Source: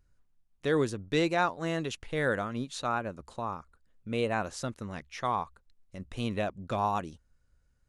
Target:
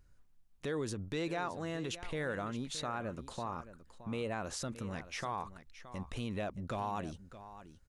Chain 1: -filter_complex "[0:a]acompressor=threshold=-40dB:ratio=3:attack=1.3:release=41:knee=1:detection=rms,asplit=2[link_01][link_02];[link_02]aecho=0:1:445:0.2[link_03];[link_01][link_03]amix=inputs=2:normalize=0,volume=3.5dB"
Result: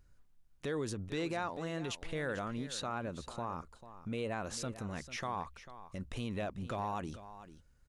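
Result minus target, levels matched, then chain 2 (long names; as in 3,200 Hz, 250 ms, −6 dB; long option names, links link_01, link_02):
echo 175 ms early
-filter_complex "[0:a]acompressor=threshold=-40dB:ratio=3:attack=1.3:release=41:knee=1:detection=rms,asplit=2[link_01][link_02];[link_02]aecho=0:1:620:0.2[link_03];[link_01][link_03]amix=inputs=2:normalize=0,volume=3.5dB"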